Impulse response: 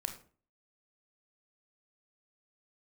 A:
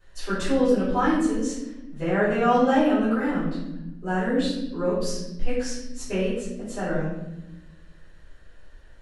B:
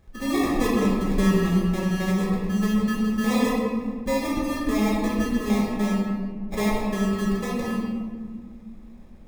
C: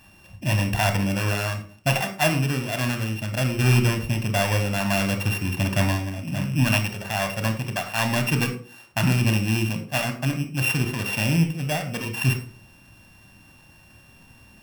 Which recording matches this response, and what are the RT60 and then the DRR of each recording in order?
C; 0.95, 1.9, 0.40 seconds; −13.5, −4.0, 6.5 decibels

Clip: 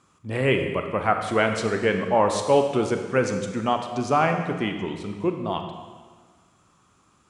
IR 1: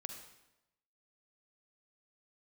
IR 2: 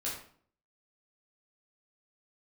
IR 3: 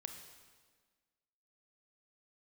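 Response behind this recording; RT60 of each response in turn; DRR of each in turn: 3; 0.95, 0.55, 1.5 seconds; 4.5, −6.5, 5.0 decibels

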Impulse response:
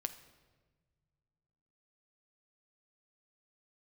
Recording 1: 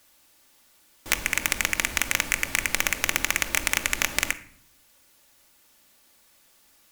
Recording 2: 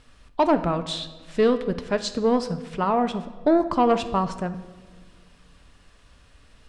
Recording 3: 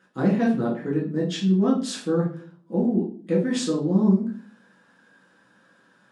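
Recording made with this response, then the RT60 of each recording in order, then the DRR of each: 2; non-exponential decay, non-exponential decay, 0.45 s; 7.0, 9.0, −4.5 decibels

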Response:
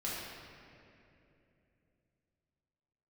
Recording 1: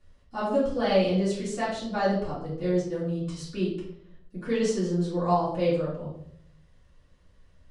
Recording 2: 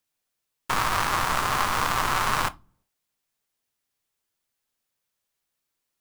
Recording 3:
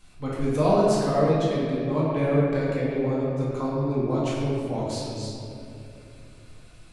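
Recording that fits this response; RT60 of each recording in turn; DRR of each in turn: 3; 0.70 s, non-exponential decay, 2.9 s; −10.5, 14.0, −8.0 decibels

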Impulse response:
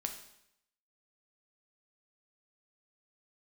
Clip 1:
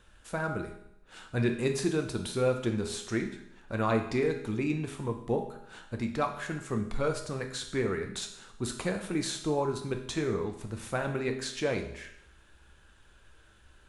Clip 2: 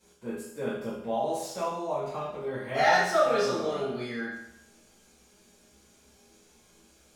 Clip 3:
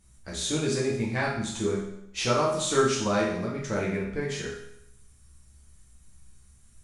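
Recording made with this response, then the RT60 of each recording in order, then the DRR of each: 1; 0.75, 0.75, 0.75 seconds; 4.0, −12.0, −5.0 decibels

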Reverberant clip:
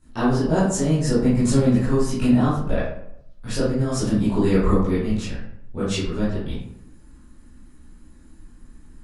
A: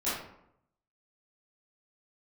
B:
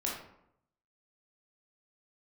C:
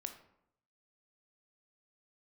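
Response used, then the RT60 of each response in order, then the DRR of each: A; 0.75, 0.75, 0.75 seconds; −13.0, −4.0, 6.0 decibels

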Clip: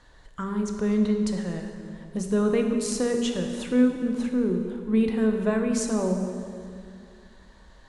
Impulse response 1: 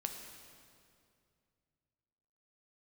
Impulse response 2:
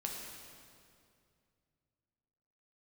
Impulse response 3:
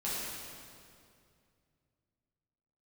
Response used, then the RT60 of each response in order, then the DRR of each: 1; 2.4, 2.4, 2.4 seconds; 3.5, −1.0, −9.5 decibels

